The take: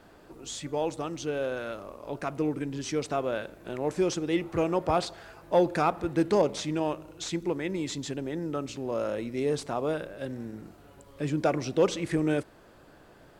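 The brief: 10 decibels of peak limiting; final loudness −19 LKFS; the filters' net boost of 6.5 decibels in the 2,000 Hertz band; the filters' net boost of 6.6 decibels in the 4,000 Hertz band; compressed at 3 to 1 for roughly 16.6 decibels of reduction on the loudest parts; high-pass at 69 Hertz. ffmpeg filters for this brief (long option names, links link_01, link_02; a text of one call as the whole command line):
ffmpeg -i in.wav -af "highpass=69,equalizer=frequency=2000:width_type=o:gain=7,equalizer=frequency=4000:width_type=o:gain=6,acompressor=threshold=-41dB:ratio=3,volume=25.5dB,alimiter=limit=-8dB:level=0:latency=1" out.wav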